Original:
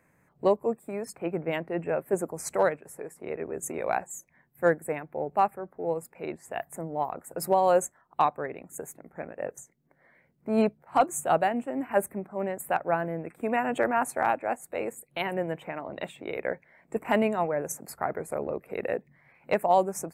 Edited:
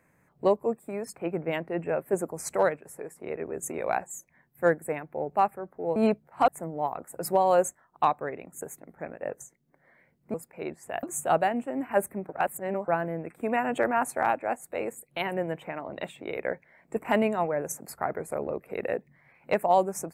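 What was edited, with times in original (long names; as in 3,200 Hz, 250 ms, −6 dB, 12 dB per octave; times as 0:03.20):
0:05.96–0:06.65: swap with 0:10.51–0:11.03
0:12.29–0:12.88: reverse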